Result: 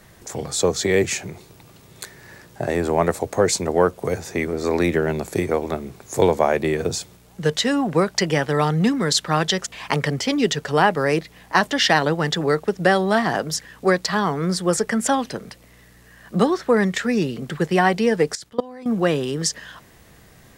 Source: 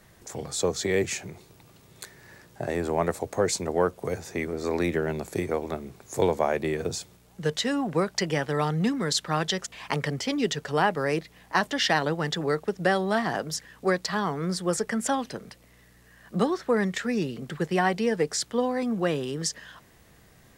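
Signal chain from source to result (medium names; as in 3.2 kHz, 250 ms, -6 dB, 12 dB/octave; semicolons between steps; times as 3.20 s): 18.35–18.86 s: level held to a coarse grid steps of 22 dB; trim +6.5 dB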